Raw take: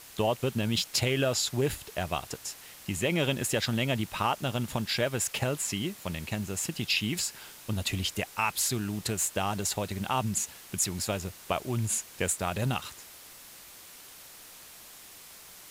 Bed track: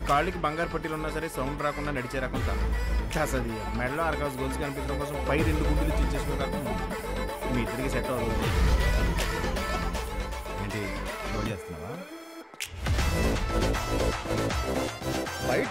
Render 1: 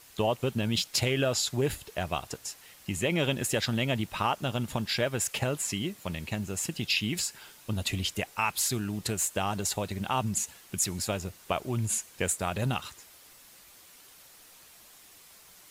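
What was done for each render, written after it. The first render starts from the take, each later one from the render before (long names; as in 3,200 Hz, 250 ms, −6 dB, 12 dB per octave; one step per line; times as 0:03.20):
broadband denoise 6 dB, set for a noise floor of −50 dBFS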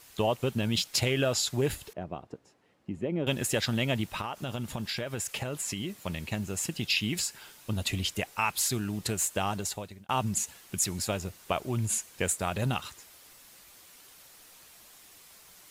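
0:01.93–0:03.27: resonant band-pass 280 Hz, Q 0.9
0:04.07–0:05.92: downward compressor 12 to 1, threshold −29 dBFS
0:09.48–0:10.09: fade out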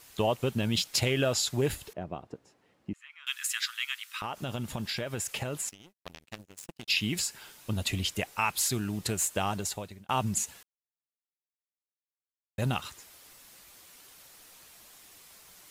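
0:02.93–0:04.22: Butterworth high-pass 1,200 Hz 48 dB per octave
0:05.69–0:06.88: power curve on the samples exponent 3
0:10.63–0:12.58: silence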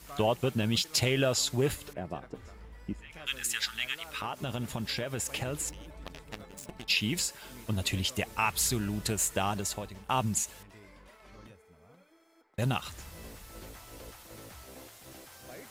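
mix in bed track −21.5 dB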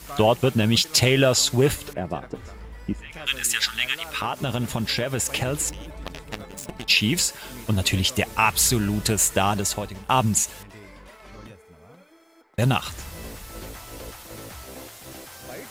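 level +9 dB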